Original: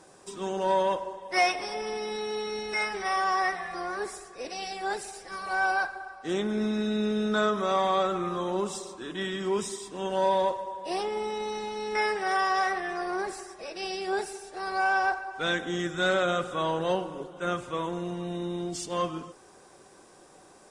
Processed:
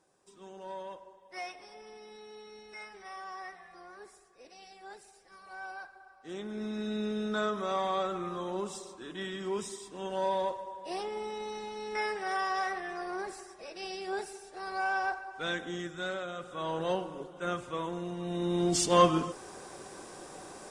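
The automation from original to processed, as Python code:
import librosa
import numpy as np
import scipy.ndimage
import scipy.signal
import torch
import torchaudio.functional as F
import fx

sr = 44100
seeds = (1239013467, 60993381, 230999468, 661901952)

y = fx.gain(x, sr, db=fx.line((5.84, -17.0), (6.92, -6.0), (15.67, -6.0), (16.32, -13.5), (16.8, -4.0), (18.16, -4.0), (18.77, 7.5)))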